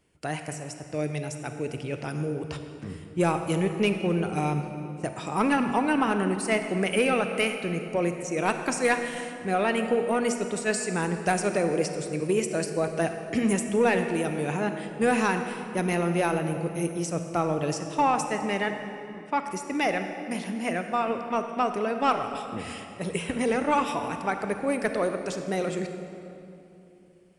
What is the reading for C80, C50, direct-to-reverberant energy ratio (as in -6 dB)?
8.0 dB, 7.0 dB, 6.5 dB